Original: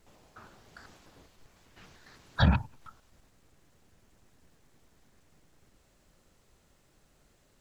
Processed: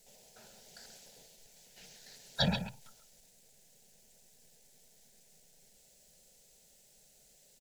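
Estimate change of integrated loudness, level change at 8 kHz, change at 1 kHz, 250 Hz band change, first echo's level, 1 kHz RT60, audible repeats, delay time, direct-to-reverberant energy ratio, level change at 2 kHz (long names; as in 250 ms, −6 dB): −8.0 dB, can't be measured, −7.0 dB, −5.0 dB, −10.0 dB, no reverb audible, 1, 134 ms, no reverb audible, −5.5 dB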